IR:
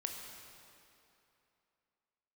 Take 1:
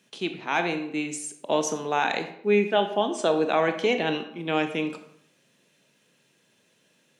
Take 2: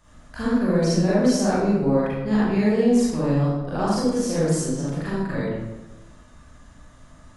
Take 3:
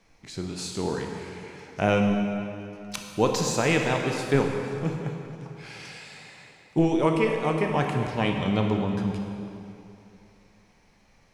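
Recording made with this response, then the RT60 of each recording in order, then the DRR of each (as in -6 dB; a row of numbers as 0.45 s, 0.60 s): 3; 0.70 s, 1.1 s, 2.9 s; 7.0 dB, -9.5 dB, 2.0 dB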